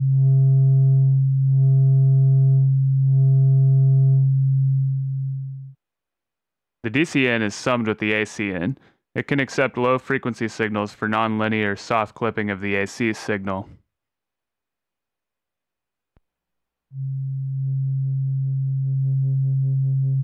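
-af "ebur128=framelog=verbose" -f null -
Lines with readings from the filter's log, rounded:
Integrated loudness:
  I:         -20.1 LUFS
  Threshold: -30.5 LUFS
Loudness range:
  LRA:        13.4 LU
  Threshold: -41.8 LUFS
  LRA low:   -30.3 LUFS
  LRA high:  -16.8 LUFS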